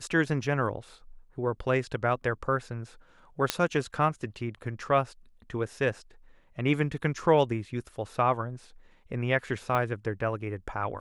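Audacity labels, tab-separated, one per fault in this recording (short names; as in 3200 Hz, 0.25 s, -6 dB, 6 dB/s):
3.500000	3.500000	pop -7 dBFS
9.750000	9.750000	pop -16 dBFS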